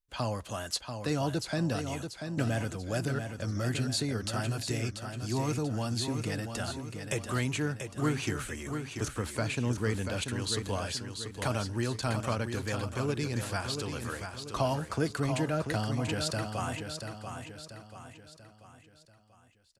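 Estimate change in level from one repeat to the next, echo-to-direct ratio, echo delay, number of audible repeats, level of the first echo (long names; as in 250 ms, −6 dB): −7.0 dB, −6.0 dB, 687 ms, 5, −7.0 dB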